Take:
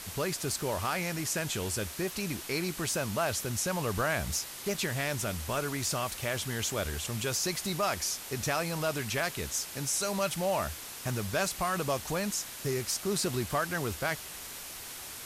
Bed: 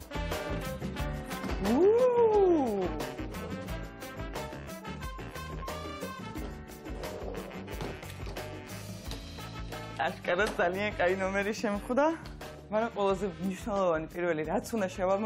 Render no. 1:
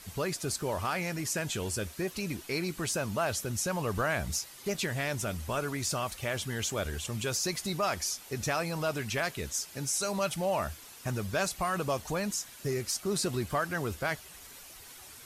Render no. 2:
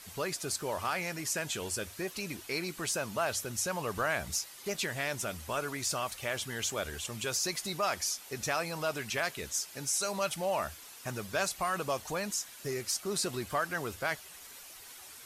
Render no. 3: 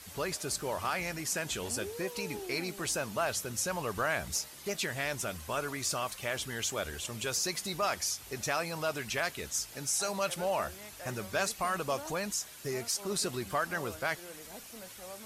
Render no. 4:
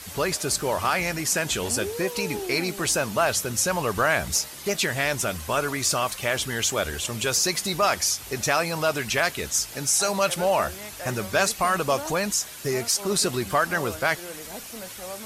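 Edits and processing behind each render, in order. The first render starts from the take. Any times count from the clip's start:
noise reduction 9 dB, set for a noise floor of -43 dBFS
bass shelf 290 Hz -9 dB; hum notches 50/100 Hz
add bed -19 dB
trim +9.5 dB

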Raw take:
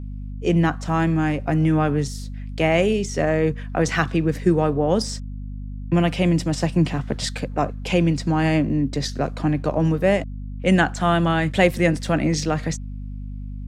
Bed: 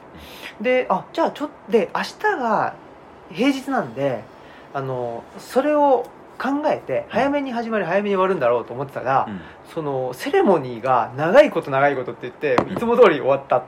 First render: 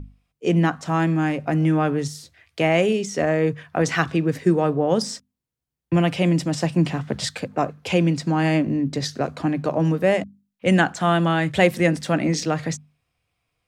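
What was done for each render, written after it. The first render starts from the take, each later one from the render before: hum notches 50/100/150/200/250 Hz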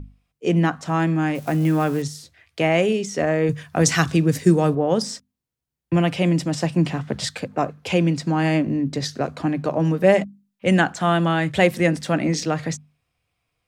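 1.35–2.02 s: zero-crossing glitches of -29 dBFS; 3.49–4.75 s: tone controls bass +6 dB, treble +13 dB; 10.00–10.65 s: comb 5.1 ms, depth 62%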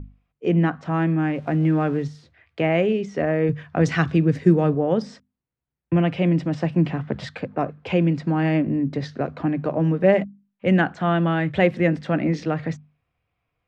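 low-pass 2.3 kHz 12 dB/octave; dynamic bell 980 Hz, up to -4 dB, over -33 dBFS, Q 1.2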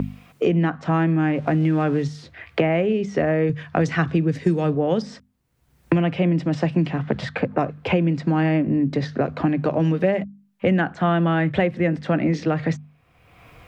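three bands compressed up and down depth 100%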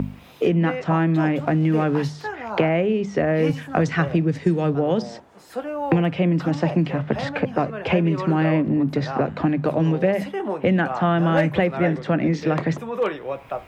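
add bed -11 dB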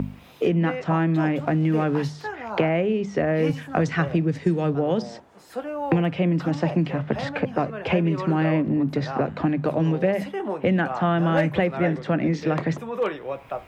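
trim -2 dB

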